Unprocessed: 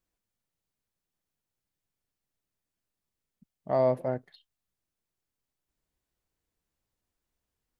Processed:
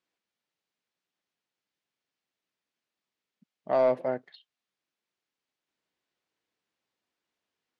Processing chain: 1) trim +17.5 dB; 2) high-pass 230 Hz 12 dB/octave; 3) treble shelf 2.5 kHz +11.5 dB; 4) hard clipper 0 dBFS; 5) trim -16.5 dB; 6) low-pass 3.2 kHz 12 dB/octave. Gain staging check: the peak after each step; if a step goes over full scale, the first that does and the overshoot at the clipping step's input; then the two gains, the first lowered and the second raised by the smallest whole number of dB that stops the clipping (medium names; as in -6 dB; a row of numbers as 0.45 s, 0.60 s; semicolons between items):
+3.0 dBFS, +2.5 dBFS, +3.0 dBFS, 0.0 dBFS, -16.5 dBFS, -16.5 dBFS; step 1, 3.0 dB; step 1 +14.5 dB, step 5 -13.5 dB